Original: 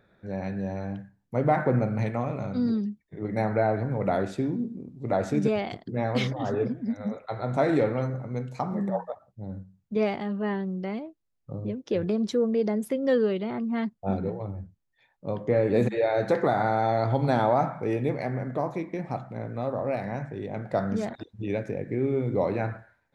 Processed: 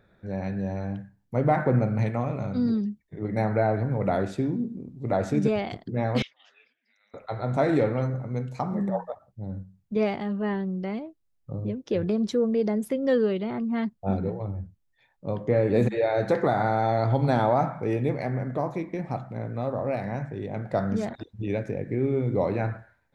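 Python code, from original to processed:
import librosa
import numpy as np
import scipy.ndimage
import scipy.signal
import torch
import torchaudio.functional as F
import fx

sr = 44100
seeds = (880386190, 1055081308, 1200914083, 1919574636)

y = fx.ladder_bandpass(x, sr, hz=3000.0, resonance_pct=65, at=(6.22, 7.14))
y = fx.low_shelf(y, sr, hz=100.0, db=7.0)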